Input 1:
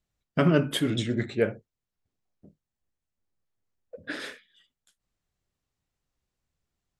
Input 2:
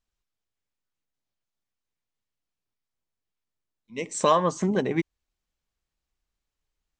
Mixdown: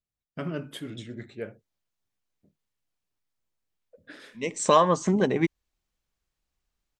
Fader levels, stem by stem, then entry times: -11.5, +1.5 dB; 0.00, 0.45 s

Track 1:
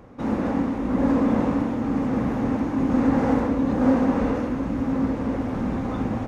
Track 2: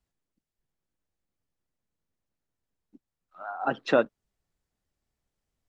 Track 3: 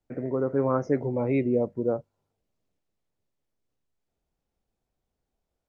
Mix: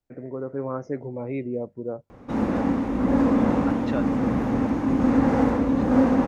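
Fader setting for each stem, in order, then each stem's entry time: +0.5, -9.0, -5.0 dB; 2.10, 0.00, 0.00 s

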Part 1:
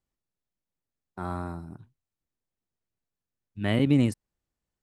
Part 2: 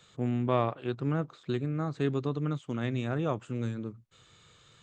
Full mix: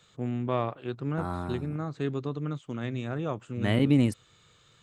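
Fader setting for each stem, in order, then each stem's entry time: -0.5, -1.5 dB; 0.00, 0.00 s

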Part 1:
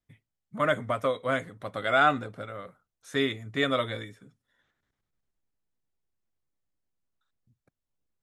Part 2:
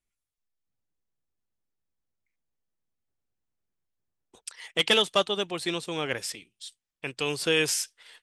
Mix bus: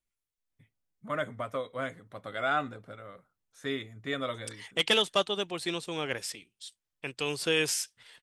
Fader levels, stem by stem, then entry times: -7.0, -3.0 dB; 0.50, 0.00 s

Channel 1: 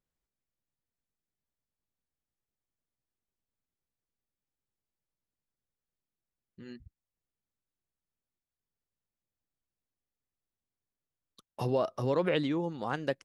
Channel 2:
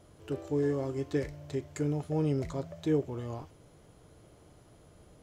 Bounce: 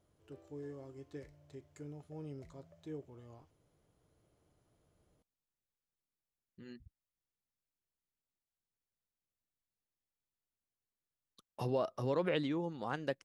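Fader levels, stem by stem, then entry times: -5.0, -17.0 dB; 0.00, 0.00 s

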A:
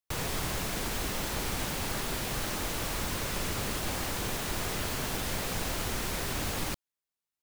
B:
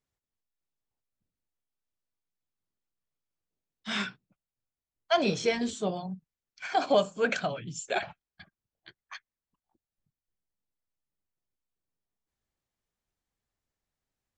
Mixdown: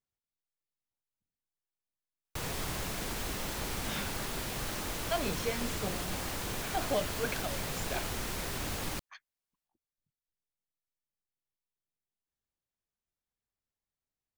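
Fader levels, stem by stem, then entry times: -3.5, -8.5 dB; 2.25, 0.00 s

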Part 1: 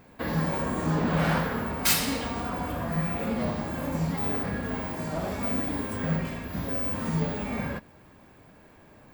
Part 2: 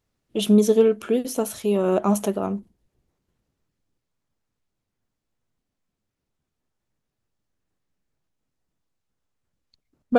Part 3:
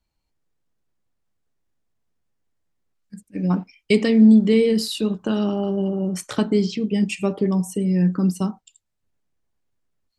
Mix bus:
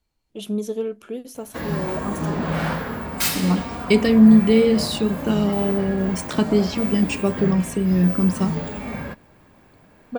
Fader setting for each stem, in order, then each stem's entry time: +1.0, -9.5, +1.0 dB; 1.35, 0.00, 0.00 s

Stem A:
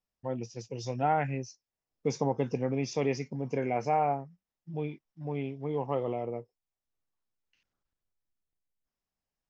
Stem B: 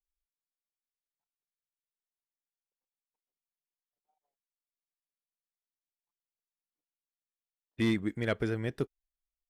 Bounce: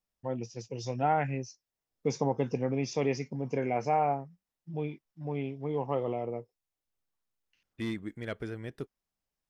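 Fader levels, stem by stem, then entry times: 0.0, -6.5 dB; 0.00, 0.00 s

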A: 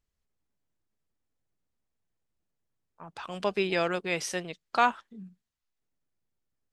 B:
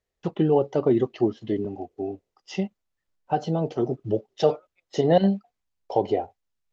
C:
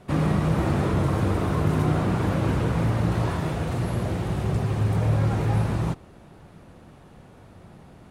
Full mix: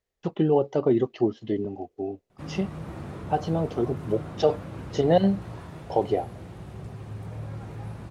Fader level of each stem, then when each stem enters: off, -1.0 dB, -14.5 dB; off, 0.00 s, 2.30 s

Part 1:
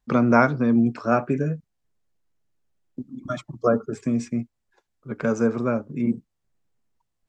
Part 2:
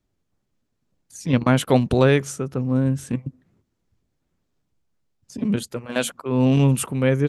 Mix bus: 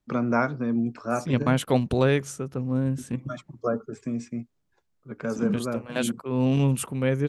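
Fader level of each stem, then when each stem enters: -6.5, -5.0 dB; 0.00, 0.00 s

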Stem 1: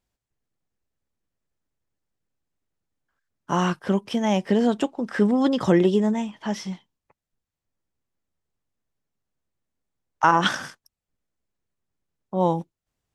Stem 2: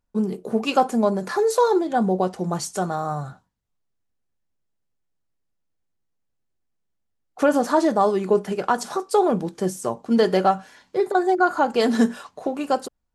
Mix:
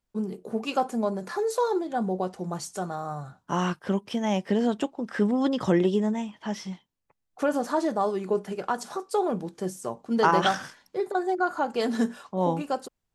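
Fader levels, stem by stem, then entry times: -4.0, -7.0 dB; 0.00, 0.00 s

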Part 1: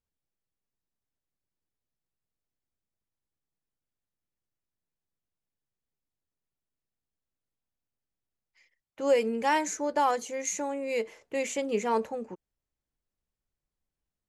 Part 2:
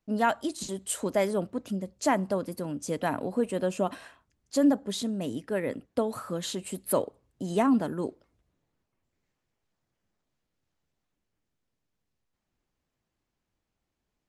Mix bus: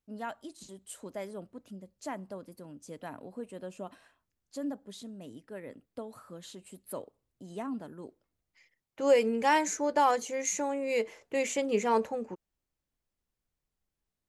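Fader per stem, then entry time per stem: +0.5, -13.5 dB; 0.00, 0.00 s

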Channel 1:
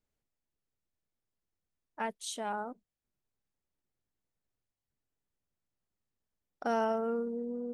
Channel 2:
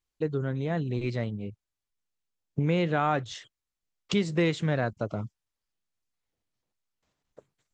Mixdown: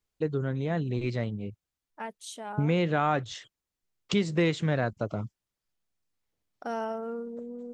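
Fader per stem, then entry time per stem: -2.5, 0.0 dB; 0.00, 0.00 s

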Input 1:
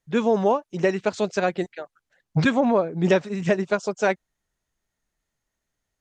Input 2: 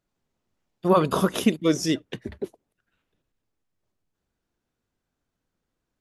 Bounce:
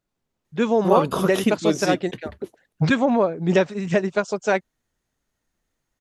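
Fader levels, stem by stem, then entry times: +1.0, -0.5 dB; 0.45, 0.00 s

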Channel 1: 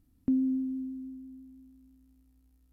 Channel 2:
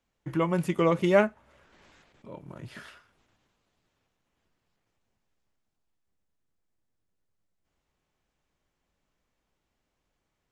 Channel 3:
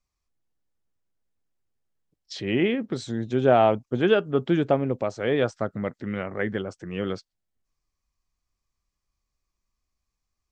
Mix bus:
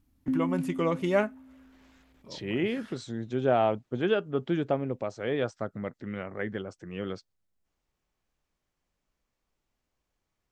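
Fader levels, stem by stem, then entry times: -2.0, -4.0, -6.0 dB; 0.00, 0.00, 0.00 s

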